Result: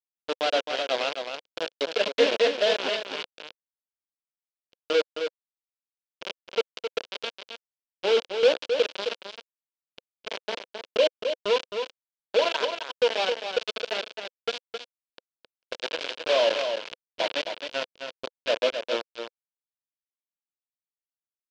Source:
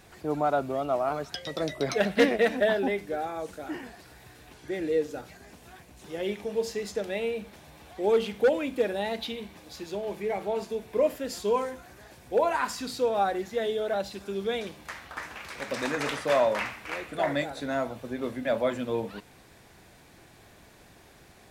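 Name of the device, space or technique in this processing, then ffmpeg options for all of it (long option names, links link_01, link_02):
hand-held game console: -af "highpass=frequency=170:width=0.5412,highpass=frequency=170:width=1.3066,acrusher=bits=3:mix=0:aa=0.000001,highpass=460,equalizer=frequency=510:width_type=q:width=4:gain=5,equalizer=frequency=800:width_type=q:width=4:gain=-7,equalizer=frequency=1200:width_type=q:width=4:gain=-8,equalizer=frequency=1900:width_type=q:width=4:gain=-9,equalizer=frequency=3000:width_type=q:width=4:gain=4,lowpass=frequency=4700:width=0.5412,lowpass=frequency=4700:width=1.3066,agate=range=-33dB:threshold=-43dB:ratio=3:detection=peak,aecho=1:1:264:0.447,volume=1.5dB"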